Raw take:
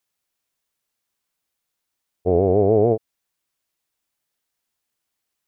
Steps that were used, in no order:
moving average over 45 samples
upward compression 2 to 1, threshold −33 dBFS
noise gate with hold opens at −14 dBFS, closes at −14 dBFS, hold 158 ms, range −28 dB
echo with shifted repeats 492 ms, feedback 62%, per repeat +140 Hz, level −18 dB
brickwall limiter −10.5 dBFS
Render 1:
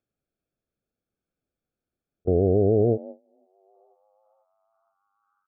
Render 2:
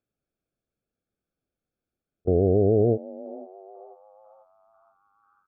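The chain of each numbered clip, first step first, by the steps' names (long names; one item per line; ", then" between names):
echo with shifted repeats, then noise gate with hold, then upward compression, then moving average, then brickwall limiter
noise gate with hold, then upward compression, then echo with shifted repeats, then moving average, then brickwall limiter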